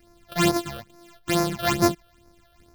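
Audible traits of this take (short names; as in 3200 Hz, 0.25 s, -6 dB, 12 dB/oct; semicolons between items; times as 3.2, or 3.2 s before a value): a buzz of ramps at a fixed pitch in blocks of 128 samples; phasing stages 8, 2.3 Hz, lowest notch 270–3100 Hz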